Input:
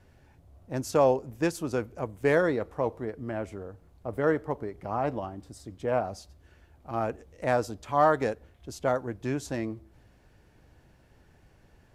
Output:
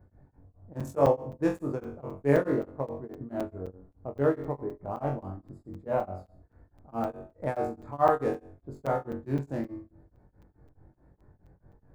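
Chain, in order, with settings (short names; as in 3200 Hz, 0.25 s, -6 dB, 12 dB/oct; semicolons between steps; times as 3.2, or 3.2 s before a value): Wiener smoothing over 15 samples; on a send: flutter echo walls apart 3.7 m, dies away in 0.4 s; 2.44–3.21 on the sum: gate -33 dBFS, range -8 dB; bell 4200 Hz -12 dB 2.5 oct; hum 60 Hz, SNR 33 dB; high shelf 9300 Hz +5 dB; shoebox room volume 880 m³, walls furnished, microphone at 0.42 m; crackling interface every 0.26 s, samples 256, zero, from 0.8; beating tremolo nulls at 4.7 Hz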